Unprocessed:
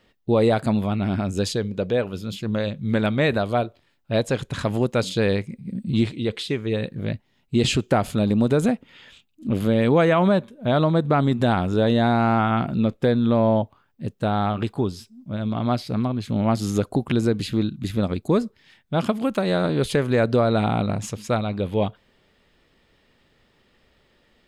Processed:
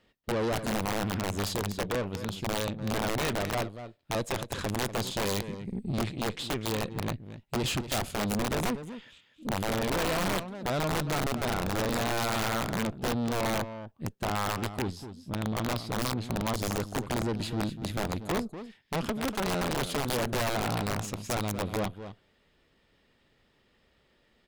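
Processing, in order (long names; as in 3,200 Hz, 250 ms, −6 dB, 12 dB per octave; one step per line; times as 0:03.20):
tube saturation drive 25 dB, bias 0.75
single-tap delay 239 ms −11.5 dB
wrap-around overflow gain 22 dB
level −1.5 dB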